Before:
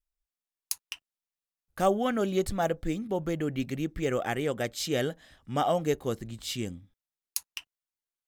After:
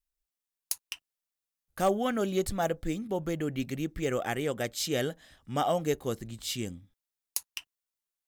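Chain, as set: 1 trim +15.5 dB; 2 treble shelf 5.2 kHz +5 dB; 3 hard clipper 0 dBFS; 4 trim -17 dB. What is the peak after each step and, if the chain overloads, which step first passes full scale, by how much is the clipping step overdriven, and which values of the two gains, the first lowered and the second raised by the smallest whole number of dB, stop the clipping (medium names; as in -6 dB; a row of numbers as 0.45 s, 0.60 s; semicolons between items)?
+6.5 dBFS, +10.0 dBFS, 0.0 dBFS, -17.0 dBFS; step 1, 10.0 dB; step 1 +5.5 dB, step 4 -7 dB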